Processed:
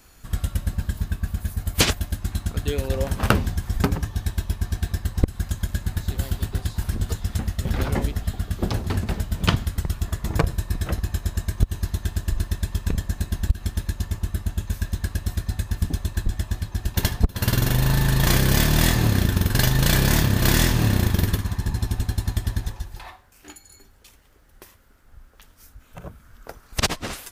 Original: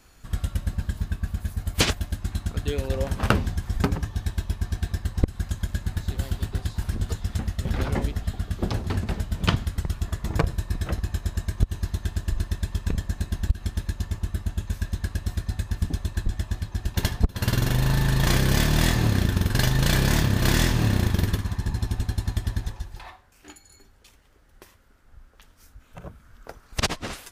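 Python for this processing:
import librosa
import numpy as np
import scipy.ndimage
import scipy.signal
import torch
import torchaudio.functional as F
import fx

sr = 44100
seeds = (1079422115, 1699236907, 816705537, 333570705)

y = fx.high_shelf(x, sr, hz=12000.0, db=11.0)
y = y * librosa.db_to_amplitude(2.0)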